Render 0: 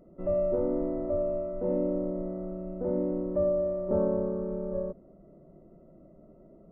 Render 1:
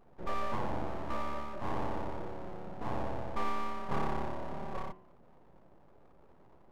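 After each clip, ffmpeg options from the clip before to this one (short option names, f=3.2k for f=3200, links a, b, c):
-af "aeval=exprs='abs(val(0))':c=same,bandreject=f=93.36:t=h:w=4,bandreject=f=186.72:t=h:w=4,bandreject=f=280.08:t=h:w=4,bandreject=f=373.44:t=h:w=4,bandreject=f=466.8:t=h:w=4,bandreject=f=560.16:t=h:w=4,bandreject=f=653.52:t=h:w=4,bandreject=f=746.88:t=h:w=4,bandreject=f=840.24:t=h:w=4,bandreject=f=933.6:t=h:w=4,bandreject=f=1.02696k:t=h:w=4,bandreject=f=1.12032k:t=h:w=4,bandreject=f=1.21368k:t=h:w=4,bandreject=f=1.30704k:t=h:w=4,bandreject=f=1.4004k:t=h:w=4,bandreject=f=1.49376k:t=h:w=4,bandreject=f=1.58712k:t=h:w=4,bandreject=f=1.68048k:t=h:w=4,bandreject=f=1.77384k:t=h:w=4,bandreject=f=1.8672k:t=h:w=4,bandreject=f=1.96056k:t=h:w=4,bandreject=f=2.05392k:t=h:w=4,bandreject=f=2.14728k:t=h:w=4,bandreject=f=2.24064k:t=h:w=4,bandreject=f=2.334k:t=h:w=4,bandreject=f=2.42736k:t=h:w=4,bandreject=f=2.52072k:t=h:w=4,bandreject=f=2.61408k:t=h:w=4,bandreject=f=2.70744k:t=h:w=4,bandreject=f=2.8008k:t=h:w=4,bandreject=f=2.89416k:t=h:w=4,bandreject=f=2.98752k:t=h:w=4,bandreject=f=3.08088k:t=h:w=4,volume=-3.5dB"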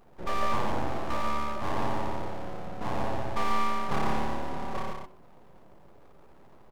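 -filter_complex "[0:a]highshelf=f=2.3k:g=7.5,asplit=2[a][b];[b]aecho=0:1:137:0.596[c];[a][c]amix=inputs=2:normalize=0,volume=3.5dB"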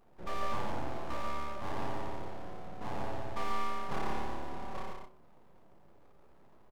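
-filter_complex "[0:a]asplit=2[a][b];[b]adelay=30,volume=-9dB[c];[a][c]amix=inputs=2:normalize=0,volume=-7.5dB"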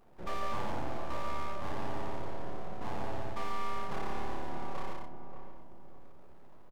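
-filter_complex "[0:a]asplit=2[a][b];[b]adelay=582,lowpass=f=960:p=1,volume=-10dB,asplit=2[c][d];[d]adelay=582,lowpass=f=960:p=1,volume=0.4,asplit=2[e][f];[f]adelay=582,lowpass=f=960:p=1,volume=0.4,asplit=2[g][h];[h]adelay=582,lowpass=f=960:p=1,volume=0.4[i];[a][c][e][g][i]amix=inputs=5:normalize=0,areverse,acompressor=threshold=-29dB:ratio=6,areverse,volume=2.5dB"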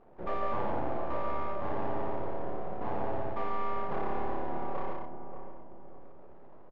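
-af "lowpass=2.3k,equalizer=f=510:t=o:w=2:g=7"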